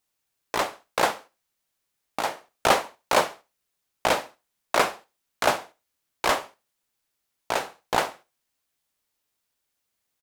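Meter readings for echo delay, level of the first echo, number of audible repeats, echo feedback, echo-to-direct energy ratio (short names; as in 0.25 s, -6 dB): 69 ms, -20.5 dB, 2, 29%, -20.0 dB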